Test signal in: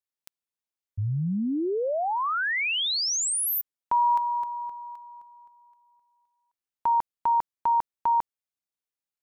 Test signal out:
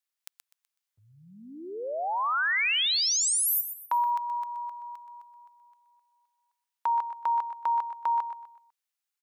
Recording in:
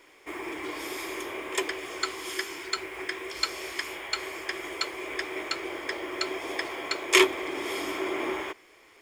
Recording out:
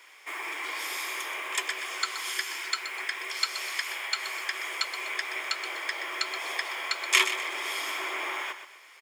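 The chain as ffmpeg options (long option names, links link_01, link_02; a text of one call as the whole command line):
ffmpeg -i in.wav -filter_complex "[0:a]highpass=1000,asplit=2[link_01][link_02];[link_02]acompressor=threshold=-37dB:ratio=6:attack=19:release=128:knee=1:detection=rms,volume=1.5dB[link_03];[link_01][link_03]amix=inputs=2:normalize=0,aecho=1:1:125|250|375|500:0.299|0.104|0.0366|0.0128,volume=-2dB" out.wav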